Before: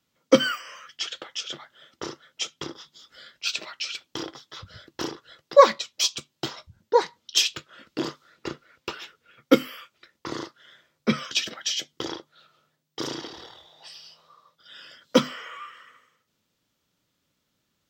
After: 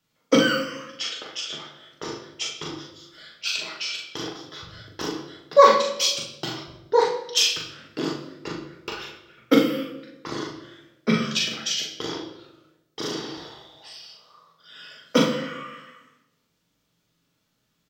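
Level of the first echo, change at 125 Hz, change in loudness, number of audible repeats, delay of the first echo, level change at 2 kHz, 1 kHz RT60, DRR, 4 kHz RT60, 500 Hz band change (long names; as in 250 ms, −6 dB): −4.0 dB, +5.0 dB, +1.5 dB, 1, 41 ms, +3.0 dB, 0.85 s, −2.0 dB, 0.65 s, +1.0 dB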